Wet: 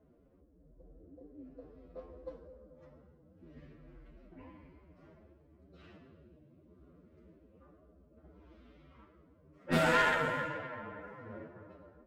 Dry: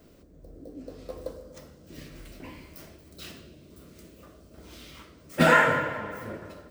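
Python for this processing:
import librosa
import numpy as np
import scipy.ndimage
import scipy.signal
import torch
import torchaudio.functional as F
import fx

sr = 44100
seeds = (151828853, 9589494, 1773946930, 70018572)

y = fx.stretch_vocoder(x, sr, factor=1.8)
y = fx.env_lowpass(y, sr, base_hz=1100.0, full_db=-21.5)
y = fx.tube_stage(y, sr, drive_db=14.0, bias=0.7)
y = y * 10.0 ** (-5.0 / 20.0)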